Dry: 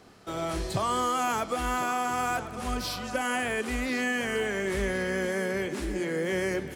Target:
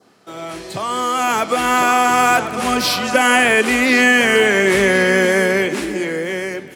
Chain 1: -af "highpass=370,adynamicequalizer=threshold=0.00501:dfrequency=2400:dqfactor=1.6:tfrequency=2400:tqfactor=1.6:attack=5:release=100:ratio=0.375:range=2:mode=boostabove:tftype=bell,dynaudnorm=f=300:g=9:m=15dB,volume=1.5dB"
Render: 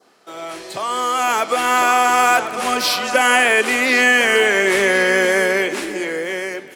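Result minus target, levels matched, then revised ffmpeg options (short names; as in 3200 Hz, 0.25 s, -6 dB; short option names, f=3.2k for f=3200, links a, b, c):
125 Hz band -9.5 dB
-af "highpass=170,adynamicequalizer=threshold=0.00501:dfrequency=2400:dqfactor=1.6:tfrequency=2400:tqfactor=1.6:attack=5:release=100:ratio=0.375:range=2:mode=boostabove:tftype=bell,dynaudnorm=f=300:g=9:m=15dB,volume=1.5dB"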